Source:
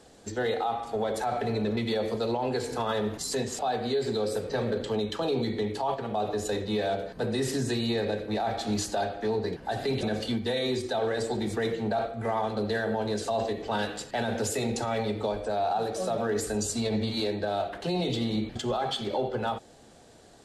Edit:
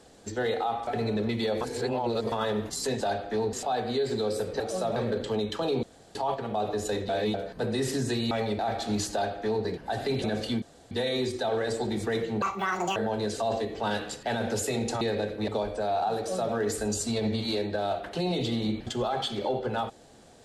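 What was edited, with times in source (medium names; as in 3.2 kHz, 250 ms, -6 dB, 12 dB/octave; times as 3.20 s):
0.87–1.35 s: delete
2.09–2.80 s: reverse
5.43–5.75 s: room tone
6.69–6.94 s: reverse
7.91–8.38 s: swap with 14.89–15.17 s
8.92–9.44 s: copy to 3.49 s
10.41 s: insert room tone 0.29 s
11.92–12.84 s: speed 170%
15.86–16.22 s: copy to 4.56 s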